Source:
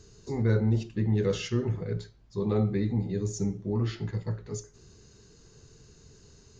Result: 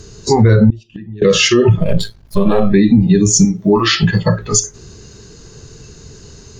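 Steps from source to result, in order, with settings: 1.79–2.74 half-wave gain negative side -12 dB; spectral noise reduction 17 dB; 3.45–4.03 low shelf 450 Hz -11 dB; compressor 2.5:1, threshold -42 dBFS, peak gain reduction 13.5 dB; 0.7–1.22 flipped gate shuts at -46 dBFS, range -25 dB; maximiser +35 dB; gain -1 dB

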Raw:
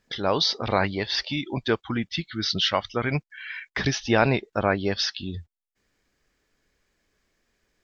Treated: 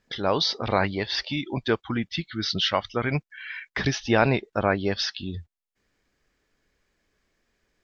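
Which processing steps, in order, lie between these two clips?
high shelf 6100 Hz -5 dB

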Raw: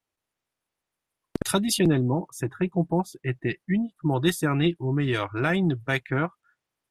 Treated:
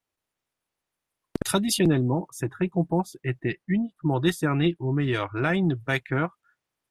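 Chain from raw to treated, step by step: 3.42–5.76 high shelf 5900 Hz -6.5 dB

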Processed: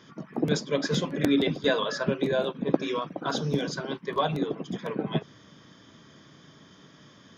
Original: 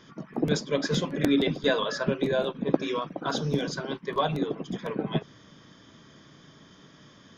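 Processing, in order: HPF 63 Hz

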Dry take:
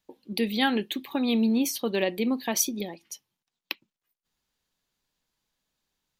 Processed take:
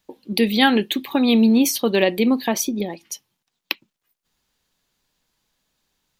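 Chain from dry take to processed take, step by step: 2.48–2.9 high shelf 2300 Hz -9 dB; gain +8.5 dB

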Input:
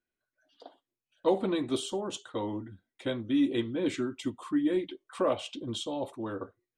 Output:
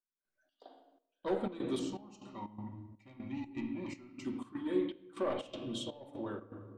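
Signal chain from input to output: soft clip -21.5 dBFS, distortion -17 dB; 1.79–4.25 fixed phaser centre 2300 Hz, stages 8; reverb RT60 1.3 s, pre-delay 5 ms, DRR 1.5 dB; step gate "..xx.xxx" 122 bpm -12 dB; gain -6.5 dB

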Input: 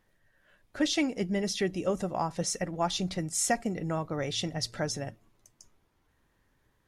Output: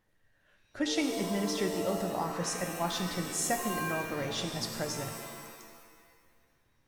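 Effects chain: shimmer reverb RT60 1.6 s, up +7 st, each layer -2 dB, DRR 5 dB; gain -4 dB

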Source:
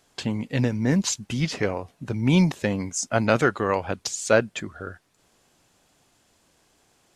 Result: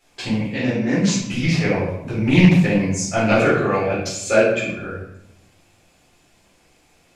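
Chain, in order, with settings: bell 2400 Hz +8 dB 0.33 oct; in parallel at -9 dB: soft clip -17.5 dBFS, distortion -9 dB; 0.51–1.18 on the sum: BPF 190–7100 Hz; 3.38–4.79 notch comb 960 Hz; reverb RT60 0.80 s, pre-delay 6 ms, DRR -9.5 dB; Doppler distortion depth 0.24 ms; gain -9.5 dB

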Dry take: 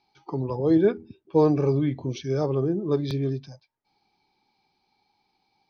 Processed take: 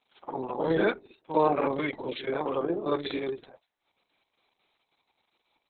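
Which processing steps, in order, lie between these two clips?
spectral limiter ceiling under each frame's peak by 16 dB; HPF 330 Hz 12 dB/oct; air absorption 53 m; reverse echo 55 ms -8 dB; Opus 6 kbps 48000 Hz

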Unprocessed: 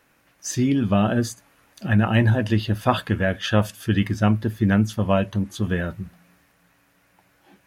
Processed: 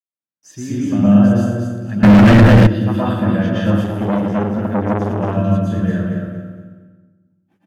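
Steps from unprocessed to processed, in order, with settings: gate -52 dBFS, range -43 dB; HPF 120 Hz 12 dB/oct; bell 4100 Hz -4.5 dB 0.21 oct; feedback echo 0.229 s, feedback 28%, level -5.5 dB; reverb RT60 1.3 s, pre-delay 0.113 s, DRR -9 dB; 2.03–2.67 sample leveller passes 5; tilt -1.5 dB/oct; 3.84–5.37 core saturation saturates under 760 Hz; gain -10.5 dB

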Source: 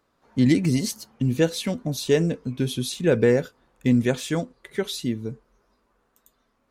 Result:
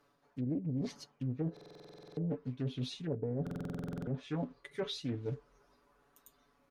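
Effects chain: low shelf 80 Hz -4 dB; notch 7600 Hz, Q 8.8; in parallel at -5 dB: short-mantissa float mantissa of 2-bit; on the sum: treble ducked by the level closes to 430 Hz, closed at -13 dBFS; comb 7 ms, depth 75%; reverse; compressor 5:1, threshold -28 dBFS, peak gain reduction 18 dB; reverse; stuck buffer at 1.52/3.42, samples 2048, times 13; Doppler distortion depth 0.3 ms; gain -6.5 dB

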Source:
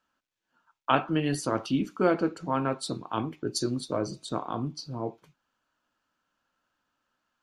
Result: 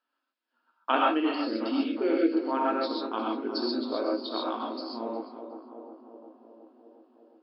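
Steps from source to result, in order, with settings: in parallel at -4.5 dB: crossover distortion -47.5 dBFS; 1.2–2.42 on the sum: Chebyshev band-stop 440–2000 Hz, order 2; 4.22–4.69 tilt +3 dB/oct; FFT band-pass 220–5400 Hz; on a send: tape echo 0.36 s, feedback 78%, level -9 dB, low-pass 1200 Hz; on the sum: non-linear reverb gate 0.16 s rising, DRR -2 dB; gain -6.5 dB

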